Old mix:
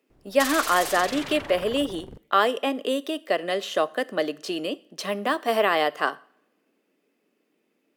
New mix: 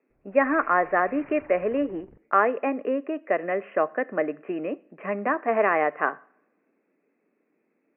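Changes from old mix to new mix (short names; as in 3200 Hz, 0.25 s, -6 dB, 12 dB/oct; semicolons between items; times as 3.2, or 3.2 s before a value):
background -10.0 dB; master: add steep low-pass 2500 Hz 96 dB/oct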